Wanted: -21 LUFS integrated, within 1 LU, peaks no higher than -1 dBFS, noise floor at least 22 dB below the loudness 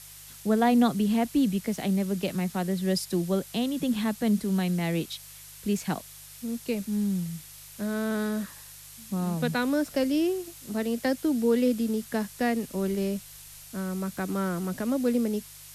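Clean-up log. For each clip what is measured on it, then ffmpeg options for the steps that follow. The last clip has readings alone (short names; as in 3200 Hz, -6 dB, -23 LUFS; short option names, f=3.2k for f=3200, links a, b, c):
hum 50 Hz; harmonics up to 150 Hz; hum level -55 dBFS; noise floor -47 dBFS; noise floor target -50 dBFS; loudness -28.0 LUFS; peak -11.5 dBFS; loudness target -21.0 LUFS
-> -af "bandreject=f=50:t=h:w=4,bandreject=f=100:t=h:w=4,bandreject=f=150:t=h:w=4"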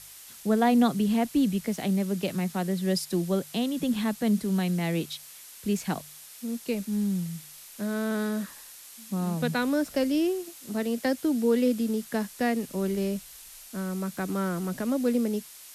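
hum none; noise floor -47 dBFS; noise floor target -50 dBFS
-> -af "afftdn=nr=6:nf=-47"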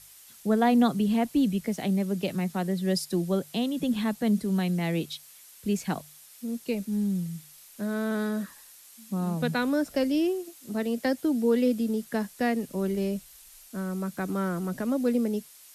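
noise floor -52 dBFS; loudness -28.0 LUFS; peak -11.5 dBFS; loudness target -21.0 LUFS
-> -af "volume=7dB"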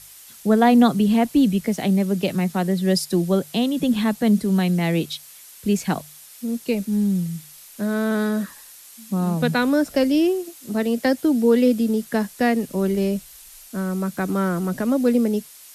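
loudness -21.0 LUFS; peak -4.5 dBFS; noise floor -45 dBFS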